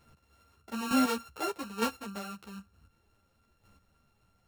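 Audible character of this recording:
a buzz of ramps at a fixed pitch in blocks of 32 samples
chopped level 1.1 Hz, depth 60%, duty 15%
a shimmering, thickened sound

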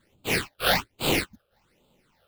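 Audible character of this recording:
aliases and images of a low sample rate 6,600 Hz, jitter 20%
phaser sweep stages 8, 1.2 Hz, lowest notch 260–1,800 Hz

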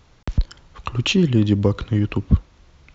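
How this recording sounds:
background noise floor −54 dBFS
spectral slope −6.5 dB per octave

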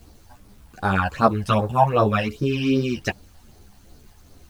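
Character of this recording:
phaser sweep stages 12, 2.6 Hz, lowest notch 380–2,700 Hz
a quantiser's noise floor 10 bits, dither none
a shimmering, thickened sound

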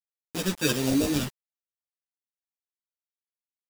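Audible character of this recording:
aliases and images of a low sample rate 2,100 Hz, jitter 0%
phaser sweep stages 2, 1.3 Hz, lowest notch 690–1,500 Hz
a quantiser's noise floor 6 bits, dither none
a shimmering, thickened sound

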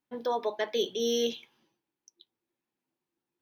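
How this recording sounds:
background noise floor −89 dBFS
spectral slope −2.0 dB per octave

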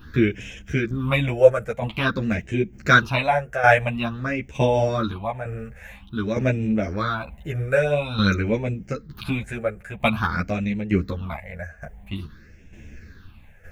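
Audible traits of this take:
phaser sweep stages 6, 0.49 Hz, lowest notch 260–1,200 Hz
tremolo saw down 1.1 Hz, depth 65%
a shimmering, thickened sound

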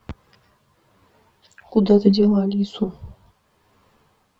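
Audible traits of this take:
tremolo triangle 1.1 Hz, depth 60%
a quantiser's noise floor 12 bits, dither none
a shimmering, thickened sound

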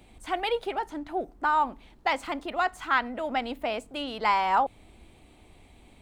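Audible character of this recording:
background noise floor −56 dBFS
spectral slope −0.5 dB per octave

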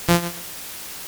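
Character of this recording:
a buzz of ramps at a fixed pitch in blocks of 256 samples
tremolo triangle 8.3 Hz, depth 70%
a quantiser's noise floor 8 bits, dither triangular
SBC

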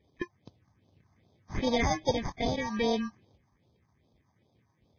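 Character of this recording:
aliases and images of a low sample rate 1,400 Hz, jitter 0%
phaser sweep stages 4, 2.5 Hz, lowest notch 450–2,000 Hz
Ogg Vorbis

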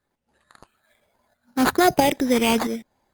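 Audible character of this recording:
phaser sweep stages 8, 1.1 Hz, lowest notch 610–1,300 Hz
tremolo saw up 1.5 Hz, depth 55%
aliases and images of a low sample rate 5,600 Hz, jitter 0%
Opus

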